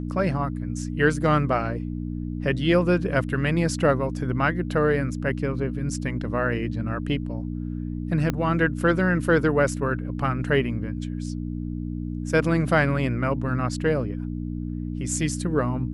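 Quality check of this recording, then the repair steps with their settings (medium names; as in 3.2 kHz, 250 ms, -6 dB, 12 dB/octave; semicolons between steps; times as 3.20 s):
hum 60 Hz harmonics 5 -30 dBFS
8.30 s: pop -11 dBFS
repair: de-click; de-hum 60 Hz, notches 5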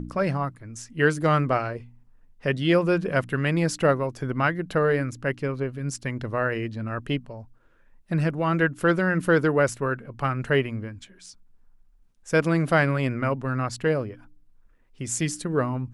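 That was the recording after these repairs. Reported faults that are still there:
8.30 s: pop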